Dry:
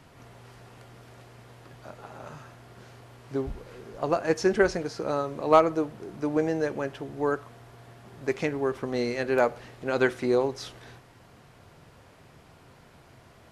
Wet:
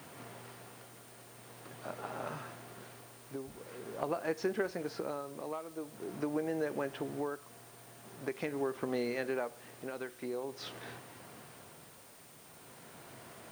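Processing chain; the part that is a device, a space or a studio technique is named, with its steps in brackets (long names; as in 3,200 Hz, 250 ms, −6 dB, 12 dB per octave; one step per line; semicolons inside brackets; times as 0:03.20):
medium wave at night (band-pass filter 160–4,400 Hz; downward compressor, threshold −34 dBFS, peak gain reduction 20 dB; amplitude tremolo 0.45 Hz, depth 61%; steady tone 9,000 Hz −66 dBFS; white noise bed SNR 19 dB)
level +3 dB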